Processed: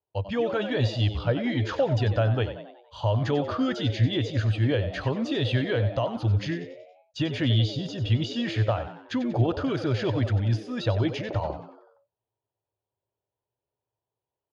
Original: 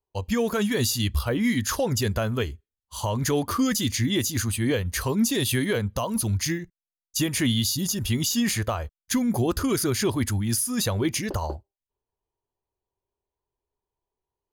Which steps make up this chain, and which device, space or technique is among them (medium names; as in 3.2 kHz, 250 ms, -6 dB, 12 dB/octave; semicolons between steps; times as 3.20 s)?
frequency-shifting delay pedal into a guitar cabinet (frequency-shifting echo 93 ms, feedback 49%, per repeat +97 Hz, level -11.5 dB; cabinet simulation 110–3500 Hz, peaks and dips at 110 Hz +10 dB, 210 Hz -10 dB, 380 Hz -4 dB, 600 Hz +5 dB, 1.1 kHz -6 dB, 2.1 kHz -7 dB)